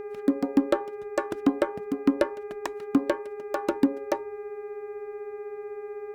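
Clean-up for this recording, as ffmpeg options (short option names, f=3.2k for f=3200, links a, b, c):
-af "bandreject=f=404.1:t=h:w=4,bandreject=f=808.2:t=h:w=4,bandreject=f=1.2123k:t=h:w=4,bandreject=f=1.6164k:t=h:w=4,bandreject=f=2.0205k:t=h:w=4,bandreject=f=2.4246k:t=h:w=4,bandreject=f=420:w=30"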